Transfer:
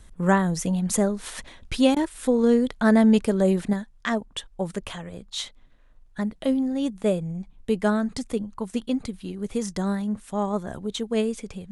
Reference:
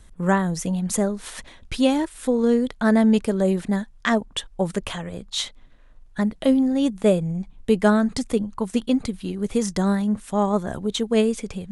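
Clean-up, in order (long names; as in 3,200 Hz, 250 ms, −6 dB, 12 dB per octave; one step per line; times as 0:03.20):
repair the gap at 0:01.95, 13 ms
level 0 dB, from 0:03.73 +5 dB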